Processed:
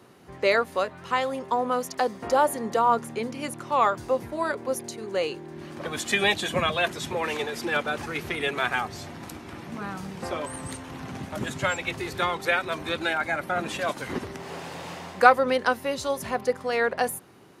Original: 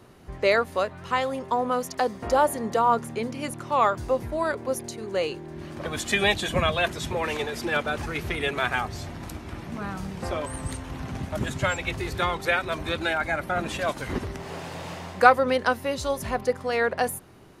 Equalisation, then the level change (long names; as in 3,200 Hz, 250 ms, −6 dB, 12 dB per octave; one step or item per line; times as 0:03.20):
Bessel high-pass filter 160 Hz, order 2
notch filter 630 Hz, Q 19
0.0 dB